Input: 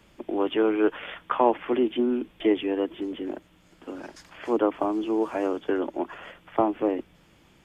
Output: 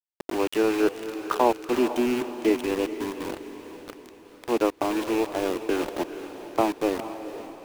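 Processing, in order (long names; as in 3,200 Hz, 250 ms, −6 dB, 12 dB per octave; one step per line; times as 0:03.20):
loose part that buzzes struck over −32 dBFS, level −27 dBFS
centre clipping without the shift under −28.5 dBFS
on a send: feedback delay with all-pass diffusion 459 ms, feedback 47%, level −11 dB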